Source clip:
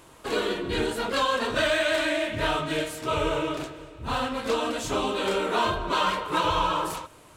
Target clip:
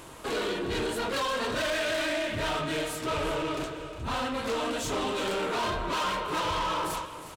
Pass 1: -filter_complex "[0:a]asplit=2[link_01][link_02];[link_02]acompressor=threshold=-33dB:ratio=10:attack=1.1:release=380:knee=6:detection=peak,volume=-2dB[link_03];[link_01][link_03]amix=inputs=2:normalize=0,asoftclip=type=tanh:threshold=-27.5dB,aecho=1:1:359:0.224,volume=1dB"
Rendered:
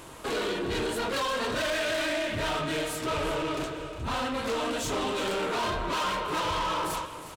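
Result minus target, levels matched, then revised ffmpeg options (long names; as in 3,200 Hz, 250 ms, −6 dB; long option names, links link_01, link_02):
downward compressor: peak gain reduction −10 dB
-filter_complex "[0:a]asplit=2[link_01][link_02];[link_02]acompressor=threshold=-44dB:ratio=10:attack=1.1:release=380:knee=6:detection=peak,volume=-2dB[link_03];[link_01][link_03]amix=inputs=2:normalize=0,asoftclip=type=tanh:threshold=-27.5dB,aecho=1:1:359:0.224,volume=1dB"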